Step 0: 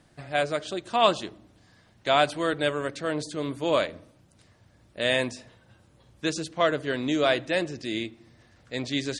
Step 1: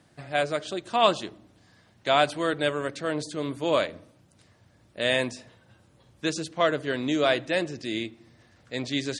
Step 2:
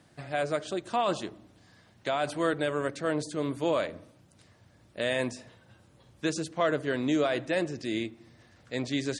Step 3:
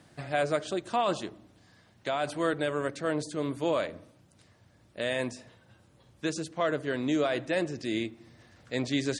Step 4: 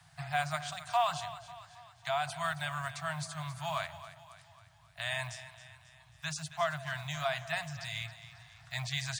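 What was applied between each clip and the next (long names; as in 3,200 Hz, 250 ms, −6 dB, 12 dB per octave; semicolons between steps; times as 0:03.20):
high-pass filter 70 Hz
brickwall limiter −16 dBFS, peak gain reduction 10.5 dB; dynamic equaliser 3,600 Hz, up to −5 dB, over −46 dBFS, Q 0.89
speech leveller 2 s
one scale factor per block 7 bits; Chebyshev band-stop filter 160–680 Hz, order 5; echo with a time of its own for lows and highs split 670 Hz, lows 186 ms, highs 271 ms, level −14 dB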